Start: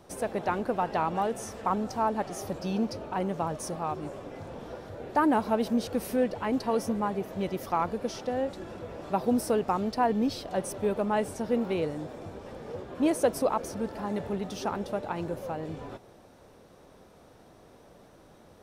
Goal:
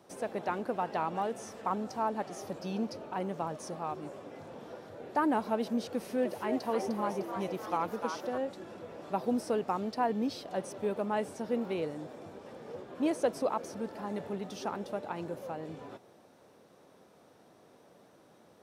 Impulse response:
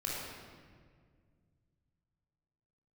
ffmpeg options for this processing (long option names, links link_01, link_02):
-filter_complex "[0:a]highpass=150,asettb=1/sr,asplit=3[link_01][link_02][link_03];[link_01]atrim=end=5.884[link_04];[link_02]atrim=start=5.88:end=8.38,asetpts=PTS-STARTPTS,afade=type=in:duration=0.004:curve=qsin,afade=type=out:start_time=2.496:duration=0.004:curve=qsin,asplit=7[link_05][link_06][link_07][link_08][link_09][link_10][link_11];[link_06]adelay=303,afreqshift=130,volume=-6.5dB[link_12];[link_07]adelay=606,afreqshift=260,volume=-13.1dB[link_13];[link_08]adelay=909,afreqshift=390,volume=-19.6dB[link_14];[link_09]adelay=1212,afreqshift=520,volume=-26.2dB[link_15];[link_10]adelay=1515,afreqshift=650,volume=-32.7dB[link_16];[link_11]adelay=1818,afreqshift=780,volume=-39.3dB[link_17];[link_05][link_12][link_13][link_14][link_15][link_16][link_17]amix=inputs=7:normalize=0,atrim=end_sample=110250[link_18];[link_03]atrim=start=8.376[link_19];[link_04][link_18]acrossfade=duration=0.004:curve1=hsin:curve2=qsin[link_20];[link_20][link_19]acrossfade=duration=0.004:curve1=qsin:curve2=hsin,acrossover=split=7800[link_21][link_22];[link_22]acompressor=threshold=-53dB:ratio=4:attack=1:release=60[link_23];[link_21][link_23]amix=inputs=2:normalize=0,volume=-4.5dB"